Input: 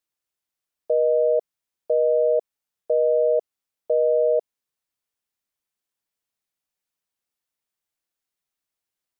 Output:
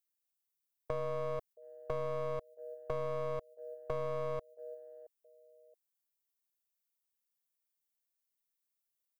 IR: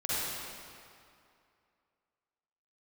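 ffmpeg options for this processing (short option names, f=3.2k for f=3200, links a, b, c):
-af "aemphasis=mode=production:type=50kf,aecho=1:1:673|1346:0.0794|0.0278,aeval=exprs='clip(val(0),-1,0.0251)':c=same,agate=range=-9dB:threshold=-39dB:ratio=16:detection=peak,acompressor=threshold=-34dB:ratio=2.5,volume=-3.5dB"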